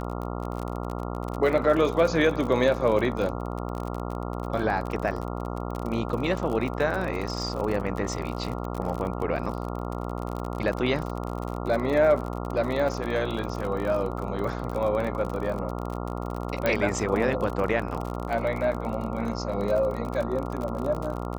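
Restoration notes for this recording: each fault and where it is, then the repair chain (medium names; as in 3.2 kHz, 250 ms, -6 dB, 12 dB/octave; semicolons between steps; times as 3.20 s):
buzz 60 Hz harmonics 23 -32 dBFS
crackle 43 per s -30 dBFS
16.66 s: pop -11 dBFS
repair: de-click; de-hum 60 Hz, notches 23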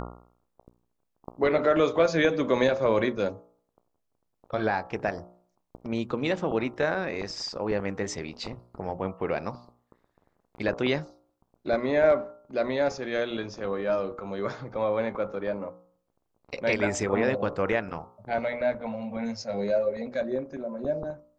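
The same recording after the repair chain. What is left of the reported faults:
nothing left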